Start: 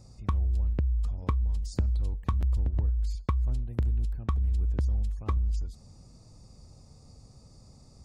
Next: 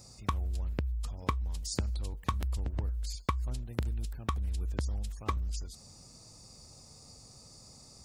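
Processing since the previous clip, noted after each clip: tilt EQ +2.5 dB/octave; trim +3 dB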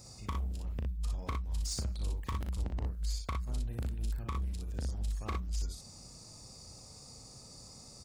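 saturation -30.5 dBFS, distortion -12 dB; early reflections 37 ms -7.5 dB, 60 ms -4 dB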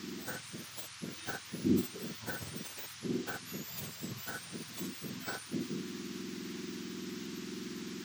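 spectrum inverted on a logarithmic axis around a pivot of 1.3 kHz; band noise 960–6600 Hz -54 dBFS; trim +3.5 dB

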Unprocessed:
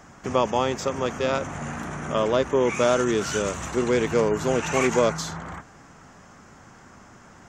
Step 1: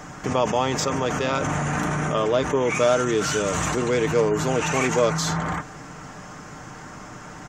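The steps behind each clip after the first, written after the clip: comb 6.6 ms, depth 42%; in parallel at -0.5 dB: compressor with a negative ratio -33 dBFS, ratio -1; on the sum: trim -1 dB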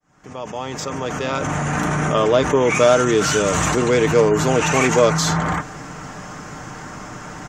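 fade-in on the opening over 2.24 s; trim +5.5 dB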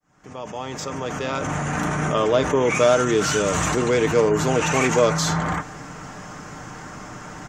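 flange 0.97 Hz, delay 9.5 ms, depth 1.3 ms, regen -90%; trim +1.5 dB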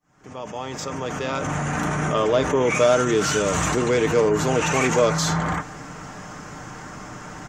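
in parallel at -8.5 dB: saturation -12.5 dBFS, distortion -16 dB; on the sum: pre-echo 48 ms -18 dB; trim -3 dB

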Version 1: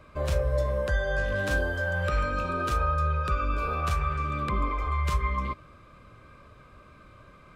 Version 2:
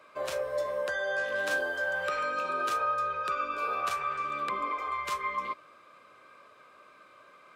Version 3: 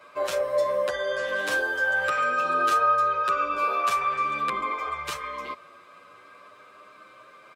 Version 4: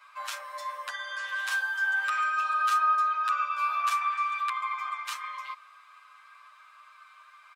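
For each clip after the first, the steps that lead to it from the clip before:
high-pass 490 Hz 12 dB/octave
endless flanger 8.3 ms +0.34 Hz; trim +8.5 dB
steep high-pass 900 Hz 36 dB/octave; trim -2.5 dB

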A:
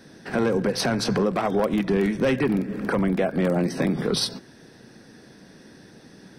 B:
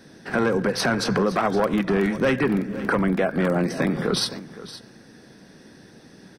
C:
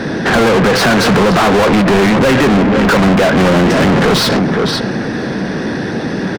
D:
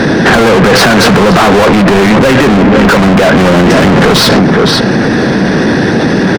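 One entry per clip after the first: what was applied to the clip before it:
dynamic bell 1.4 kHz, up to +6 dB, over -41 dBFS, Q 1.3; delay 516 ms -15.5 dB
RIAA curve playback; overdrive pedal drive 40 dB, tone 4.5 kHz, clips at -4 dBFS; echo from a far wall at 170 m, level -17 dB
loudness maximiser +13 dB; trim -1 dB

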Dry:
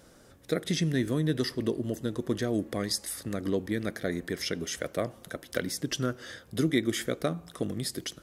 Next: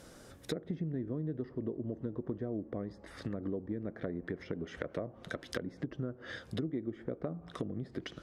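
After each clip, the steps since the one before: low-pass that closes with the level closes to 800 Hz, closed at -28.5 dBFS; compression 4:1, threshold -37 dBFS, peak gain reduction 13.5 dB; trim +2 dB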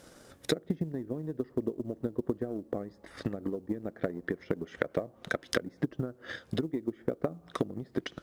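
bass shelf 150 Hz -6 dB; transient shaper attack +10 dB, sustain -3 dB; companded quantiser 8-bit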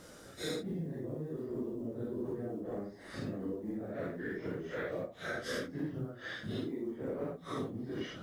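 phase randomisation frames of 200 ms; compression 2:1, threshold -41 dBFS, peak gain reduction 8 dB; trim +1.5 dB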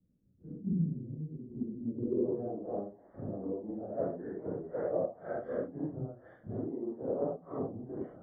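low-pass sweep 210 Hz -> 730 Hz, 1.84–2.42 s; Savitzky-Golay filter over 41 samples; three bands expanded up and down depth 100%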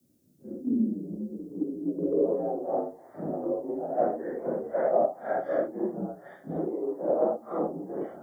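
tone controls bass -5 dB, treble +13 dB; band-stop 380 Hz, Q 12; frequency shift +58 Hz; trim +9 dB

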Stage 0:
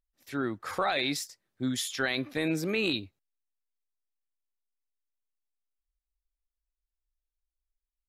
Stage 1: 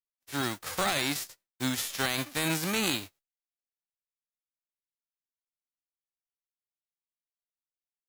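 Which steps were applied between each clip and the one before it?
formants flattened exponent 0.3; expander -51 dBFS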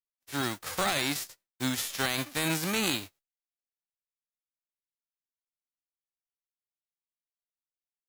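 no audible change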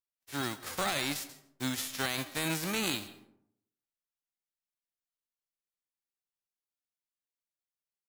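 delay 136 ms -23 dB; algorithmic reverb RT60 0.74 s, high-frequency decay 0.4×, pre-delay 110 ms, DRR 17.5 dB; trim -3.5 dB

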